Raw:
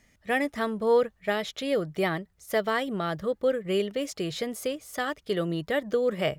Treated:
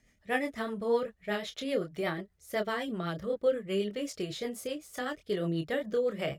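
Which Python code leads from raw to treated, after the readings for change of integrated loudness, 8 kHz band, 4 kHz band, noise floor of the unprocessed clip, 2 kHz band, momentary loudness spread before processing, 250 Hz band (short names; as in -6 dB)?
-5.0 dB, -5.0 dB, -5.0 dB, -67 dBFS, -5.5 dB, 7 LU, -4.0 dB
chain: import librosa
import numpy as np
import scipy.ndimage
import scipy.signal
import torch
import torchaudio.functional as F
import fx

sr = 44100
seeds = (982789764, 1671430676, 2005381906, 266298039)

y = fx.chorus_voices(x, sr, voices=2, hz=0.76, base_ms=27, depth_ms=3.3, mix_pct=35)
y = fx.rotary(y, sr, hz=8.0)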